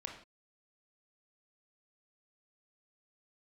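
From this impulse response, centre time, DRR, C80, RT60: 25 ms, 1.5 dB, 10.0 dB, no single decay rate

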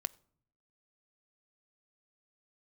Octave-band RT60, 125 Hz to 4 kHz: 1.0 s, 0.90 s, 0.65 s, 0.55 s, 0.40 s, 0.35 s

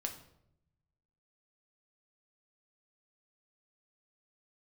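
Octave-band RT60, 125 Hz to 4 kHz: 1.6 s, 1.1 s, 0.85 s, 0.65 s, 0.55 s, 0.50 s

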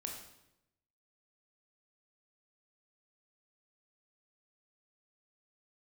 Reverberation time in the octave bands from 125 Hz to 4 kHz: 1.1 s, 1.0 s, 0.90 s, 0.80 s, 0.75 s, 0.75 s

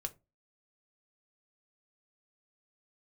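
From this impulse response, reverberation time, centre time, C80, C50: no single decay rate, 4 ms, 28.0 dB, 20.5 dB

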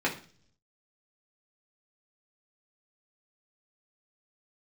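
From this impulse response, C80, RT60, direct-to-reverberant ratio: 16.0 dB, 0.45 s, -4.0 dB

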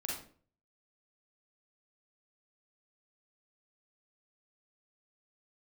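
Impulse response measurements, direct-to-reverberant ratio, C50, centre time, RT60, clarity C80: -3.5 dB, 1.5 dB, 46 ms, 0.45 s, 8.0 dB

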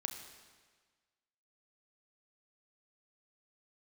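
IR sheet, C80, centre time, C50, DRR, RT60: 8.0 dB, 31 ms, 7.0 dB, 5.0 dB, 1.5 s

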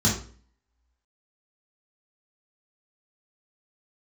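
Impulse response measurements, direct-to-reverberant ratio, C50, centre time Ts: -6.0 dB, 6.0 dB, 31 ms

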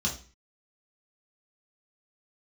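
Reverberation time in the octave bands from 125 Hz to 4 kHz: 0.45 s, 0.45 s, 0.40 s, 0.35 s, 0.35 s, 0.40 s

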